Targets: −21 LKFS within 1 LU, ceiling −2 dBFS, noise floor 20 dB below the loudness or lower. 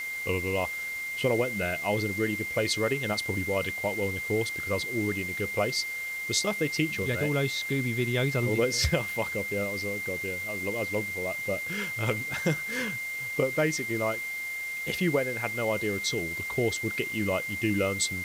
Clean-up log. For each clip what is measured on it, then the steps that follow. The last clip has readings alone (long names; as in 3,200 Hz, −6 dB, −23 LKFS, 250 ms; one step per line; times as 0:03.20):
interfering tone 2,100 Hz; level of the tone −32 dBFS; background noise floor −35 dBFS; target noise floor −49 dBFS; integrated loudness −28.5 LKFS; sample peak −11.5 dBFS; target loudness −21.0 LKFS
→ notch filter 2,100 Hz, Q 30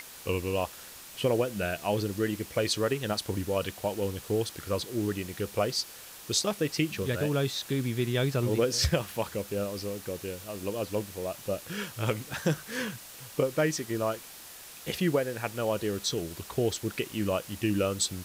interfering tone none found; background noise floor −47 dBFS; target noise floor −51 dBFS
→ broadband denoise 6 dB, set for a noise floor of −47 dBFS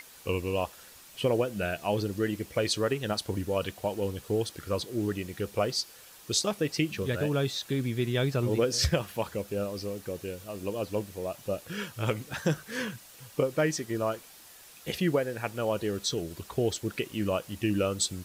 background noise floor −52 dBFS; integrated loudness −31.0 LKFS; sample peak −12.5 dBFS; target loudness −21.0 LKFS
→ level +10 dB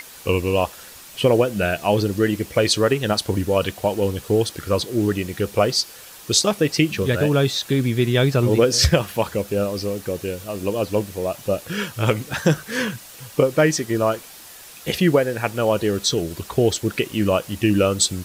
integrated loudness −21.0 LKFS; sample peak −2.5 dBFS; background noise floor −42 dBFS